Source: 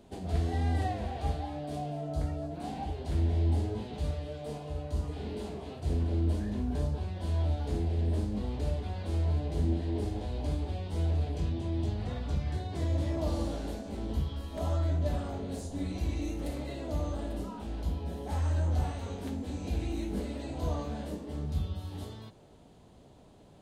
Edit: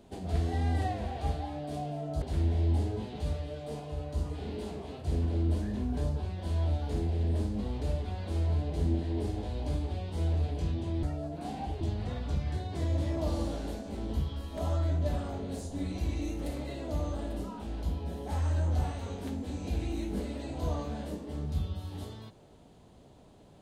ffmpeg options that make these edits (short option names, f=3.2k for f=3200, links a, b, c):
-filter_complex "[0:a]asplit=4[a][b][c][d];[a]atrim=end=2.222[e];[b]atrim=start=2.998:end=11.812[f];[c]atrim=start=2.218:end=3.002[g];[d]atrim=start=11.808[h];[e][f]acrossfade=d=0.004:c1=hsin:c2=hsin[i];[i][g]acrossfade=d=0.004:c1=hsin:c2=hsin[j];[j][h]acrossfade=d=0.004:c1=hsin:c2=hsin"